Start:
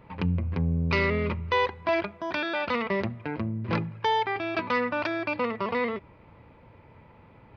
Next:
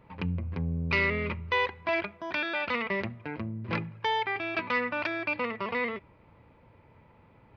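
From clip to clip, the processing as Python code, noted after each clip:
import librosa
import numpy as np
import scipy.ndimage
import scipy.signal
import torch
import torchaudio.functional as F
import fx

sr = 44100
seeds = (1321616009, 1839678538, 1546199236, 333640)

y = fx.dynamic_eq(x, sr, hz=2300.0, q=1.2, threshold_db=-44.0, ratio=4.0, max_db=7)
y = y * 10.0 ** (-5.0 / 20.0)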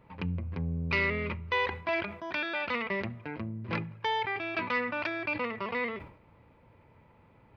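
y = fx.sustainer(x, sr, db_per_s=100.0)
y = y * 10.0 ** (-2.0 / 20.0)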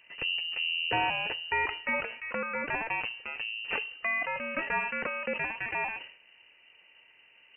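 y = fx.freq_invert(x, sr, carrier_hz=2900)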